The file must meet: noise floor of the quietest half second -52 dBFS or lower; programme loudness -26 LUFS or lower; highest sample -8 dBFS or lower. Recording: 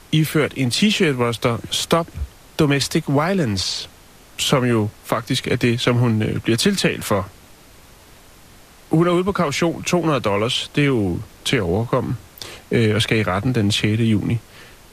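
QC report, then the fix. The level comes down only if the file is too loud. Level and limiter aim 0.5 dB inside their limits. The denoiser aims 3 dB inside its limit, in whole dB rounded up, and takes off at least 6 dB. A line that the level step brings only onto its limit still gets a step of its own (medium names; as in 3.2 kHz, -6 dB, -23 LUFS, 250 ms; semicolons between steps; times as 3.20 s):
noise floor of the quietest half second -46 dBFS: fail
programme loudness -19.5 LUFS: fail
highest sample -2.5 dBFS: fail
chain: trim -7 dB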